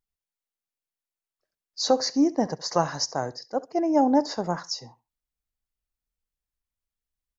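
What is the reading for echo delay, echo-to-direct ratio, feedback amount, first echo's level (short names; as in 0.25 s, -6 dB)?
68 ms, -20.0 dB, 20%, -20.0 dB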